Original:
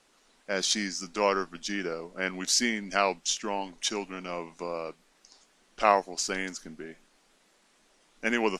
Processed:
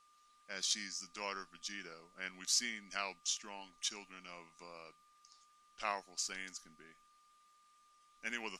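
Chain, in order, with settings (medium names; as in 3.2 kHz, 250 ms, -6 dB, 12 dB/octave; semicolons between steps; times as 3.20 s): amplifier tone stack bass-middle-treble 5-5-5; whistle 1.2 kHz -65 dBFS; trim -1.5 dB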